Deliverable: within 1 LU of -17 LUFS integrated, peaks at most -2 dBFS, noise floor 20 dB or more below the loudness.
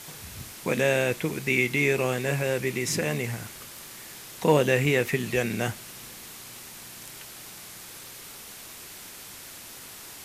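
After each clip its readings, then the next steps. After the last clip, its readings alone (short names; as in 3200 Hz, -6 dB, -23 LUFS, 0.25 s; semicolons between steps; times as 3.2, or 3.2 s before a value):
noise floor -44 dBFS; noise floor target -46 dBFS; loudness -25.5 LUFS; peak -7.5 dBFS; loudness target -17.0 LUFS
-> denoiser 6 dB, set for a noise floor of -44 dBFS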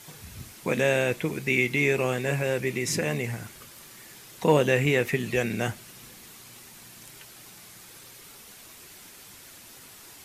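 noise floor -49 dBFS; loudness -25.5 LUFS; peak -7.5 dBFS; loudness target -17.0 LUFS
-> gain +8.5 dB; limiter -2 dBFS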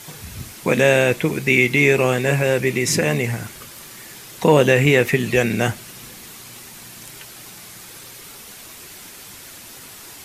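loudness -17.5 LUFS; peak -2.0 dBFS; noise floor -40 dBFS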